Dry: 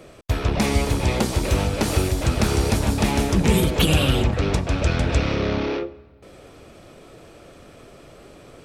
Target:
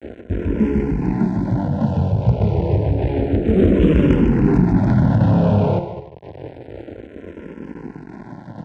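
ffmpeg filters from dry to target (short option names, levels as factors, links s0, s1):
-filter_complex "[0:a]aeval=exprs='val(0)+0.5*0.0237*sgn(val(0))':c=same,flanger=delay=16.5:depth=6.5:speed=1.3,acrusher=bits=3:dc=4:mix=0:aa=0.000001,asoftclip=type=tanh:threshold=0.266,asuperstop=centerf=1200:order=8:qfactor=4,tiltshelf=f=970:g=8.5,aecho=1:1:150:0.422,asettb=1/sr,asplit=3[s0][s1][s2];[s0]atrim=end=3.564[s3];[s1]atrim=start=3.56:end=5.79,asetpts=PTS-STARTPTS,afade=t=in:d=0.004:c=qsin,afade=t=out:st=2.226:d=0.004:c=qsin,acontrast=89[s4];[s2]atrim=start=5.786[s5];[s3][s4]acrossfade=d=0.004:c1=hsin:c2=qsin[s6];[s6][s5]acrossfade=d=0.004:c1=qsin:c2=hsin,highpass=130,lowpass=2500,lowshelf=f=180:g=9.5,acontrast=23,asplit=2[s7][s8];[s8]afreqshift=-0.29[s9];[s7][s9]amix=inputs=2:normalize=1"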